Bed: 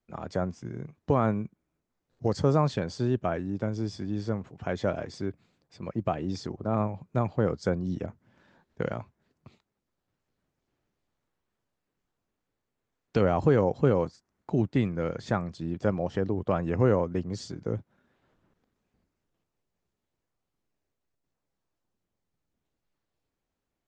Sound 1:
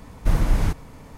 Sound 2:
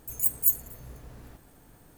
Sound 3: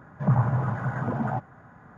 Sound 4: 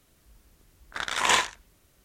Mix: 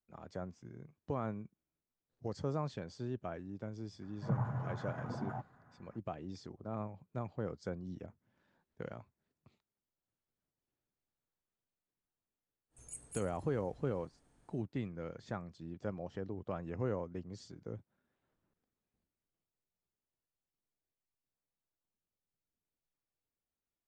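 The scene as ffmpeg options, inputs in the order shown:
-filter_complex "[0:a]volume=0.211[s0];[2:a]aresample=22050,aresample=44100[s1];[3:a]atrim=end=1.97,asetpts=PTS-STARTPTS,volume=0.211,afade=t=in:d=0.004:c=hsin,afade=t=out:st=1.966:d=0.004:c=hsin,adelay=4020[s2];[s1]atrim=end=1.97,asetpts=PTS-STARTPTS,volume=0.188,afade=t=in:d=0.1,afade=t=out:st=1.87:d=0.1,adelay=12690[s3];[s0][s2][s3]amix=inputs=3:normalize=0"

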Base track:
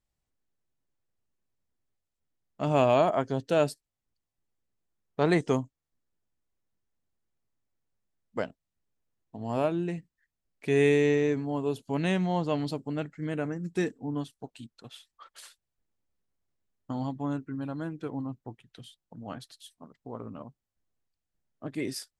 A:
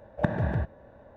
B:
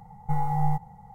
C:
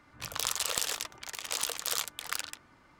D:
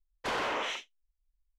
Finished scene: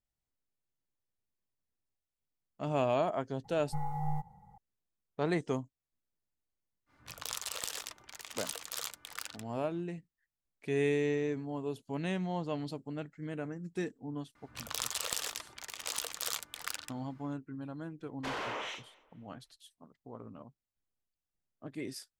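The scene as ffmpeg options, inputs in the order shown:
-filter_complex "[3:a]asplit=2[s0][s1];[0:a]volume=0.422[s2];[4:a]asplit=2[s3][s4];[s4]adelay=239,lowpass=f=2800:p=1,volume=0.0841,asplit=2[s5][s6];[s6]adelay=239,lowpass=f=2800:p=1,volume=0.38,asplit=2[s7][s8];[s8]adelay=239,lowpass=f=2800:p=1,volume=0.38[s9];[s3][s5][s7][s9]amix=inputs=4:normalize=0[s10];[2:a]atrim=end=1.14,asetpts=PTS-STARTPTS,volume=0.316,afade=t=in:d=0.004:c=hsin,afade=t=out:st=1.136:d=0.004:c=hsin,adelay=3440[s11];[s0]atrim=end=2.99,asetpts=PTS-STARTPTS,volume=0.422,afade=t=in:d=0.05,afade=t=out:st=2.94:d=0.05,adelay=6860[s12];[s1]atrim=end=2.99,asetpts=PTS-STARTPTS,volume=0.596,afade=t=in:d=0.004:c=hsin,afade=t=out:st=2.986:d=0.004:c=hsin,adelay=14350[s13];[s10]atrim=end=1.58,asetpts=PTS-STARTPTS,volume=0.531,afade=t=in:d=0.004:c=hsin,afade=t=out:st=1.576:d=0.004:c=hsin,adelay=17990[s14];[s2][s11][s12][s13][s14]amix=inputs=5:normalize=0"

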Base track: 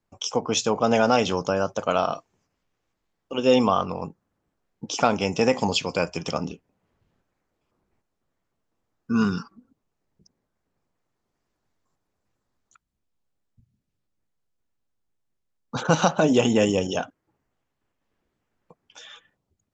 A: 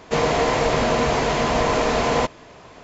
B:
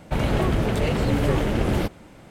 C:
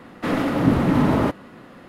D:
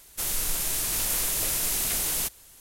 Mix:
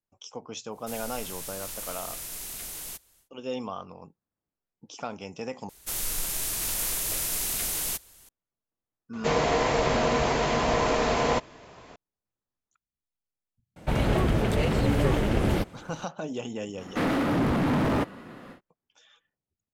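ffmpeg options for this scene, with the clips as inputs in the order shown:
-filter_complex "[4:a]asplit=2[s0][s1];[0:a]volume=0.178[s2];[3:a]volume=11.2,asoftclip=hard,volume=0.0891[s3];[s2]asplit=2[s4][s5];[s4]atrim=end=5.694[s6];[s1]atrim=end=2.6,asetpts=PTS-STARTPTS,volume=0.75[s7];[s5]atrim=start=8.286[s8];[s0]atrim=end=2.6,asetpts=PTS-STARTPTS,volume=0.282,afade=t=in:d=0.1,afade=t=out:st=2.5:d=0.1,adelay=690[s9];[1:a]atrim=end=2.83,asetpts=PTS-STARTPTS,volume=0.596,afade=t=in:d=0.004:c=hsin,afade=t=out:st=2.826:d=0.004:c=hsin,adelay=9130[s10];[2:a]atrim=end=2.3,asetpts=PTS-STARTPTS,volume=0.794,afade=t=in:d=0.004:c=hsin,afade=t=out:st=2.296:d=0.004:c=hsin,adelay=13760[s11];[s3]atrim=end=1.88,asetpts=PTS-STARTPTS,volume=0.891,afade=t=in:d=0.1,afade=t=out:st=1.78:d=0.1,adelay=16730[s12];[s6][s7]acrossfade=d=0.004:c1=hsin:c2=hsin[s13];[s13][s8]acrossfade=d=0.004:c1=hsin:c2=hsin[s14];[s14][s9][s10][s11][s12]amix=inputs=5:normalize=0"

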